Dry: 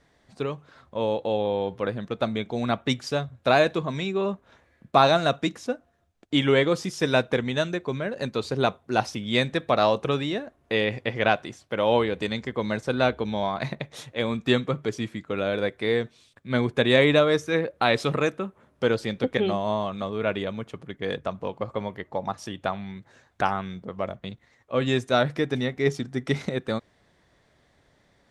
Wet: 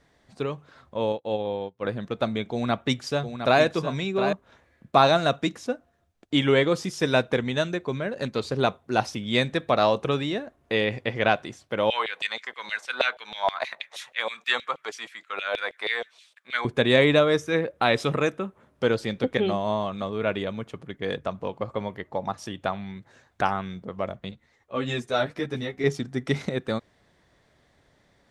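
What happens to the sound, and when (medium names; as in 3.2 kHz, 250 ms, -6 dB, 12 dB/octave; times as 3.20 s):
1.12–1.85 s: upward expansion 2.5:1, over -42 dBFS
2.52–4.33 s: delay 710 ms -8.5 dB
8.20–8.60 s: loudspeaker Doppler distortion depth 0.16 ms
11.90–16.65 s: LFO high-pass saw down 6.3 Hz 590–3100 Hz
17.19–18.47 s: band-stop 4.3 kHz
24.31–25.84 s: three-phase chorus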